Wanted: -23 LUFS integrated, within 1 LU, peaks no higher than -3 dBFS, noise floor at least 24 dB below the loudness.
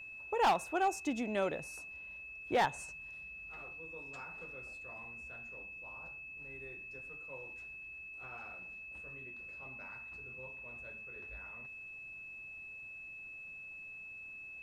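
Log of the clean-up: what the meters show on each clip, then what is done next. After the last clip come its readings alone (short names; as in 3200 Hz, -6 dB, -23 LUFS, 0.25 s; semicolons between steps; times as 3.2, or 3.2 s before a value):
clipped 0.2%; flat tops at -24.0 dBFS; steady tone 2600 Hz; tone level -46 dBFS; loudness -40.5 LUFS; peak -24.0 dBFS; loudness target -23.0 LUFS
-> clip repair -24 dBFS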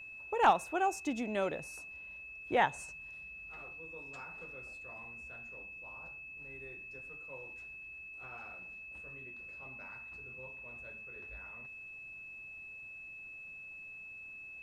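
clipped 0.0%; steady tone 2600 Hz; tone level -46 dBFS
-> notch 2600 Hz, Q 30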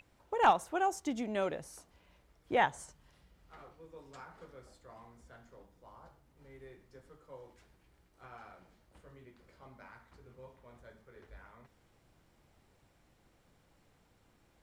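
steady tone none; loudness -32.5 LUFS; peak -14.5 dBFS; loudness target -23.0 LUFS
-> gain +9.5 dB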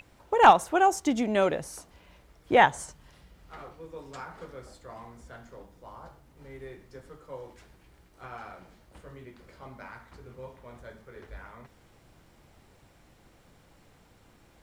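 loudness -23.0 LUFS; peak -5.0 dBFS; noise floor -60 dBFS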